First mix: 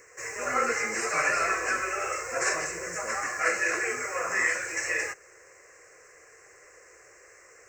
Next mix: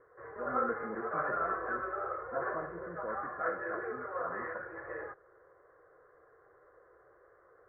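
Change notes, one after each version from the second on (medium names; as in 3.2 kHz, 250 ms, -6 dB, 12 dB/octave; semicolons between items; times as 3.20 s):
background -4.5 dB; master: add steep low-pass 1.5 kHz 48 dB/octave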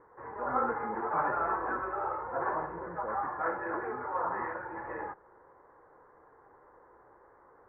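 background: remove static phaser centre 890 Hz, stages 6; master: add bass shelf 70 Hz +7 dB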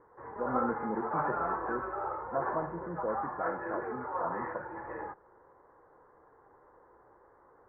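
speech +7.5 dB; master: add distance through air 430 m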